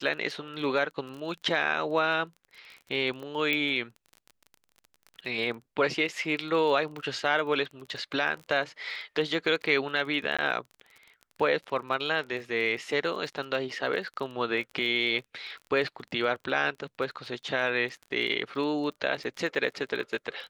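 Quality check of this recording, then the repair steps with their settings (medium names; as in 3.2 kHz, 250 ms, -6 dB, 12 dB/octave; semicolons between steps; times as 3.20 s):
crackle 23 per s -37 dBFS
3.53 s: pop -15 dBFS
10.37–10.39 s: dropout 16 ms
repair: de-click; interpolate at 10.37 s, 16 ms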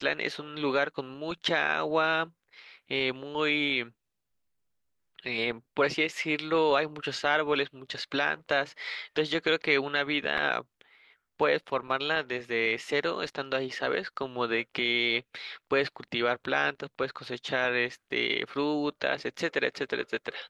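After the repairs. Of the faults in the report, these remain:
nothing left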